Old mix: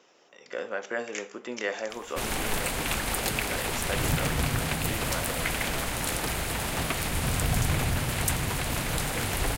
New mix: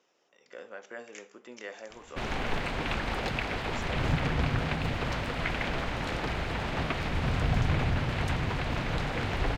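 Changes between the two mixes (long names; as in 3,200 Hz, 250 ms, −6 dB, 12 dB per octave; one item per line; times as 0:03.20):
speech −11.0 dB
background: add high-frequency loss of the air 210 metres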